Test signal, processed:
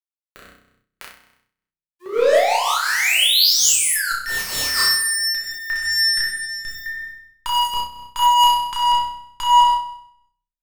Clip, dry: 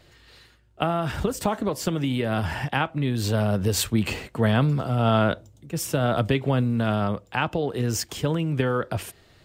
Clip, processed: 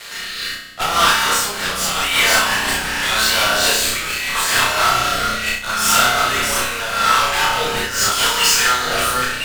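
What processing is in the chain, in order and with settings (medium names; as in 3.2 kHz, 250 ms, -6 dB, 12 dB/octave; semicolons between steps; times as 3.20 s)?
chunks repeated in reverse 686 ms, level -7 dB; high-pass 1 kHz 24 dB/octave; dynamic bell 1.4 kHz, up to -3 dB, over -42 dBFS, Q 3; in parallel at -2 dB: compression, threshold -39 dBFS; on the sum: fuzz box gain 46 dB, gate -56 dBFS; rotary cabinet horn 0.8 Hz; on a send: flutter echo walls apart 5.5 m, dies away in 0.68 s; on the sum: simulated room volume 67 m³, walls mixed, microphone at 0.86 m; random flutter of the level, depth 65%; trim -2 dB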